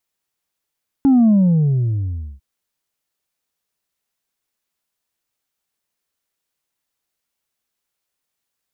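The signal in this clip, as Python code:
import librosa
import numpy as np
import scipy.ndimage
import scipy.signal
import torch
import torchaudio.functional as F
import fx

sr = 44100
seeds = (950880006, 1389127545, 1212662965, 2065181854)

y = fx.sub_drop(sr, level_db=-9.5, start_hz=280.0, length_s=1.35, drive_db=2, fade_s=1.14, end_hz=65.0)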